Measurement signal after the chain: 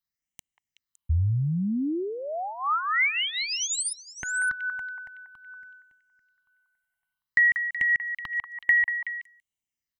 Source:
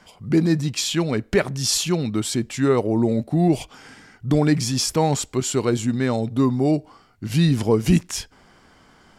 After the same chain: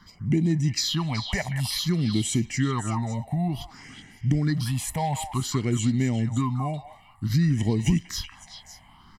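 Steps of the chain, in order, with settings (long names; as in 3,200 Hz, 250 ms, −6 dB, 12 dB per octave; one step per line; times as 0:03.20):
comb filter 1 ms, depth 59%
downward compressor, threshold −19 dBFS
all-pass phaser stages 6, 0.55 Hz, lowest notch 320–1,300 Hz
on a send: echo through a band-pass that steps 187 ms, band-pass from 1,200 Hz, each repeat 1.4 octaves, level −3 dB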